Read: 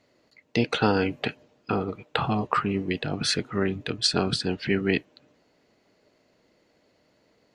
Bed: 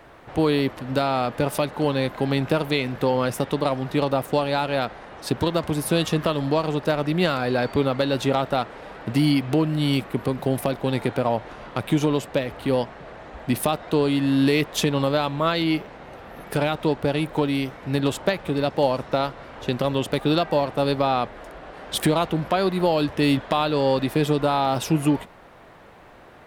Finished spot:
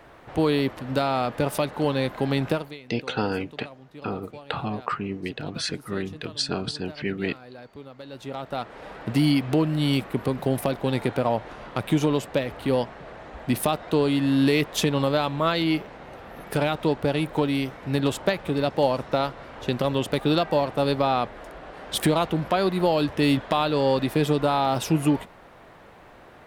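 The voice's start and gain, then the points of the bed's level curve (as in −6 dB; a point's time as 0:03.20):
2.35 s, −4.0 dB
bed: 0:02.51 −1.5 dB
0:02.80 −21 dB
0:07.94 −21 dB
0:08.85 −1 dB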